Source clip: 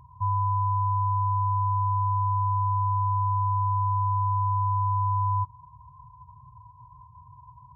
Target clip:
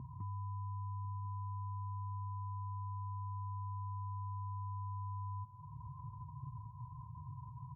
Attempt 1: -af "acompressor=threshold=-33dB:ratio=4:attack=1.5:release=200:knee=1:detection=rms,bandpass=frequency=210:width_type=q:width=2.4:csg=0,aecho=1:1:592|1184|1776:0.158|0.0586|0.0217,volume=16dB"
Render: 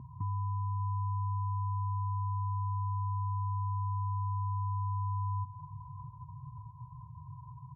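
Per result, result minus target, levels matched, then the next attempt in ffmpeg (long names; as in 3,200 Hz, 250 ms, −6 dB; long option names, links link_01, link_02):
echo 455 ms early; downward compressor: peak gain reduction −8 dB
-af "acompressor=threshold=-33dB:ratio=4:attack=1.5:release=200:knee=1:detection=rms,bandpass=frequency=210:width_type=q:width=2.4:csg=0,aecho=1:1:1047|2094|3141:0.158|0.0586|0.0217,volume=16dB"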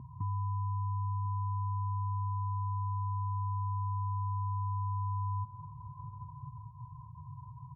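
downward compressor: peak gain reduction −8 dB
-af "acompressor=threshold=-44dB:ratio=4:attack=1.5:release=200:knee=1:detection=rms,bandpass=frequency=210:width_type=q:width=2.4:csg=0,aecho=1:1:1047|2094|3141:0.158|0.0586|0.0217,volume=16dB"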